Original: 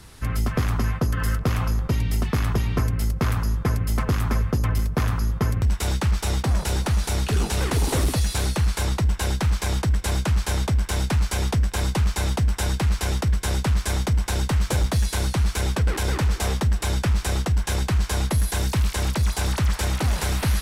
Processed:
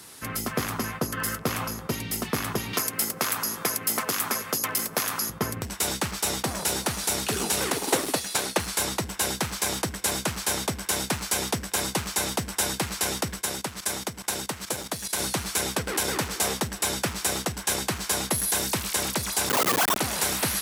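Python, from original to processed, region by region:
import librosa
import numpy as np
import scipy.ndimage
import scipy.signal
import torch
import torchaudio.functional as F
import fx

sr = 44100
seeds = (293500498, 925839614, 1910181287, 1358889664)

y = fx.chain(x, sr, fx.highpass(hz=440.0, slope=6),
    fx.high_shelf(hz=3500.0, db=6.5),
    fx.band_squash(depth_pct=100), at=(2.73, 5.3))
y = fx.chain(y, sr, fx.highpass(hz=260.0, slope=6),
    fx.high_shelf(hz=4900.0, db=-7.0),
    fx.transient(attack_db=8, sustain_db=-5), at=(7.72, 8.6))
y = fx.chain(y, sr, fx.highpass(hz=69.0, slope=12),
    fx.level_steps(step_db=14), at=(13.41, 15.19))
y = fx.chain(y, sr, fx.sine_speech(),
    fx.highpass(hz=720.0, slope=12),
    fx.schmitt(flips_db=-22.0), at=(19.49, 19.97))
y = scipy.signal.sosfilt(scipy.signal.butter(2, 220.0, 'highpass', fs=sr, output='sos'), y)
y = fx.high_shelf(y, sr, hz=6700.0, db=11.0)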